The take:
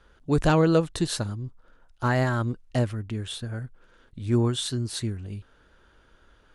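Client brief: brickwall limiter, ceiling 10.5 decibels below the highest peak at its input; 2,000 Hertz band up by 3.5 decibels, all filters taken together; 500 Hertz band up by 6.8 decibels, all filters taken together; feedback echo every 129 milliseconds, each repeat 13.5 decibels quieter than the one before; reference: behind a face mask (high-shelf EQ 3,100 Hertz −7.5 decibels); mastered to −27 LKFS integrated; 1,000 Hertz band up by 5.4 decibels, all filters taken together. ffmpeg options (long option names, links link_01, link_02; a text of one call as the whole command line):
ffmpeg -i in.wav -af "equalizer=frequency=500:width_type=o:gain=7,equalizer=frequency=1000:width_type=o:gain=4.5,equalizer=frequency=2000:width_type=o:gain=4.5,alimiter=limit=-14.5dB:level=0:latency=1,highshelf=frequency=3100:gain=-7.5,aecho=1:1:129|258:0.211|0.0444" out.wav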